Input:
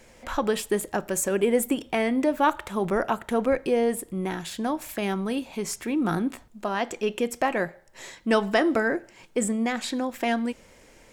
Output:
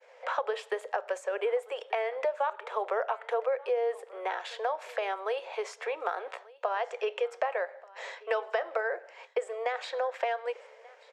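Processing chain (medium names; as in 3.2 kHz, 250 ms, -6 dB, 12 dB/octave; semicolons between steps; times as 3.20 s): steep high-pass 450 Hz 72 dB/octave; expander -50 dBFS; compression 6:1, threshold -33 dBFS, peak gain reduction 15 dB; tape spacing loss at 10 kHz 29 dB; delay 1185 ms -22.5 dB; trim +8 dB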